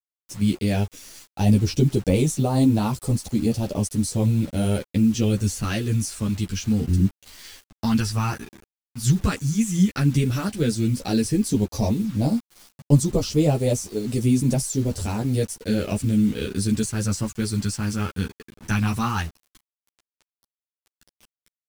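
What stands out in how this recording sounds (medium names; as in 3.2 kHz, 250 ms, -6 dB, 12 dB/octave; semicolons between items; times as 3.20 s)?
phasing stages 2, 0.094 Hz, lowest notch 600–1500 Hz; a quantiser's noise floor 8-bit, dither none; a shimmering, thickened sound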